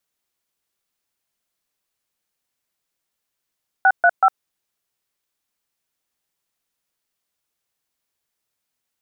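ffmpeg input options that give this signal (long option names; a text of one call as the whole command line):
ffmpeg -f lavfi -i "aevalsrc='0.237*clip(min(mod(t,0.188),0.057-mod(t,0.188))/0.002,0,1)*(eq(floor(t/0.188),0)*(sin(2*PI*770*mod(t,0.188))+sin(2*PI*1477*mod(t,0.188)))+eq(floor(t/0.188),1)*(sin(2*PI*697*mod(t,0.188))+sin(2*PI*1477*mod(t,0.188)))+eq(floor(t/0.188),2)*(sin(2*PI*770*mod(t,0.188))+sin(2*PI*1336*mod(t,0.188))))':duration=0.564:sample_rate=44100" out.wav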